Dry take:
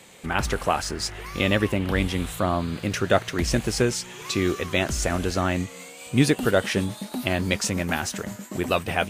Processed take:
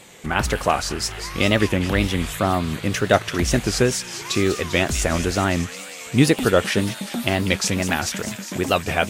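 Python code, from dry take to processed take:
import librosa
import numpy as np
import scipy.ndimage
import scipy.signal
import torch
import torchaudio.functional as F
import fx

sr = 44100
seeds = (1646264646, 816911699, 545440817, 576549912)

y = fx.echo_wet_highpass(x, sr, ms=202, feedback_pct=76, hz=2200.0, wet_db=-9.5)
y = fx.wow_flutter(y, sr, seeds[0], rate_hz=2.1, depth_cents=110.0)
y = y * librosa.db_to_amplitude(3.5)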